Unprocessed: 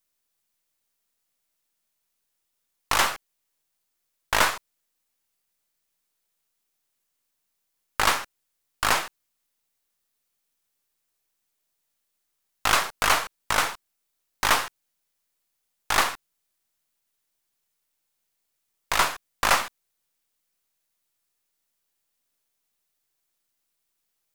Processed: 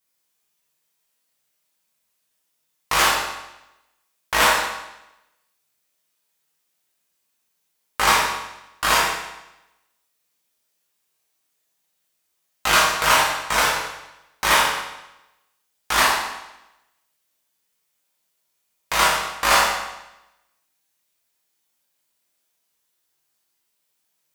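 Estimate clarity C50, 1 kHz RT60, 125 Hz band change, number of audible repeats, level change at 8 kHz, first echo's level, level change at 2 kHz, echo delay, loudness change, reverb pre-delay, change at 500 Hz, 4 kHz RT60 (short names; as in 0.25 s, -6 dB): 1.0 dB, 0.95 s, +3.5 dB, none, +5.5 dB, none, +6.0 dB, none, +4.5 dB, 6 ms, +6.0 dB, 0.90 s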